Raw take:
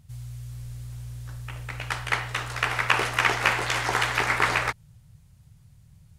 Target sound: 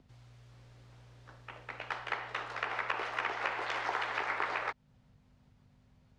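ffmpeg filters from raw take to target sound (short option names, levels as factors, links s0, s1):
-filter_complex "[0:a]acrossover=split=110|640[s0][s1][s2];[s0]acompressor=threshold=0.00631:ratio=4[s3];[s1]acompressor=threshold=0.00794:ratio=4[s4];[s2]acompressor=threshold=0.0631:ratio=4[s5];[s3][s4][s5]amix=inputs=3:normalize=0,tiltshelf=f=1200:g=5.5,aeval=exprs='val(0)+0.00355*(sin(2*PI*50*n/s)+sin(2*PI*2*50*n/s)/2+sin(2*PI*3*50*n/s)/3+sin(2*PI*4*50*n/s)/4+sin(2*PI*5*50*n/s)/5)':c=same,asplit=2[s6][s7];[s7]acompressor=threshold=0.00631:ratio=6,volume=1.41[s8];[s6][s8]amix=inputs=2:normalize=0,acrossover=split=300 5500:gain=0.1 1 0.0631[s9][s10][s11];[s9][s10][s11]amix=inputs=3:normalize=0,volume=0.447"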